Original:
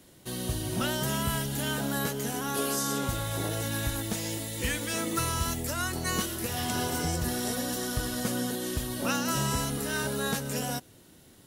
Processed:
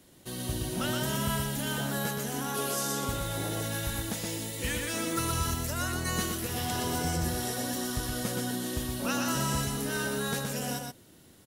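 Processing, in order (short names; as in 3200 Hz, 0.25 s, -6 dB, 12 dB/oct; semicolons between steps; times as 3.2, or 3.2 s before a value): echo 0.121 s -4 dB; gain -2.5 dB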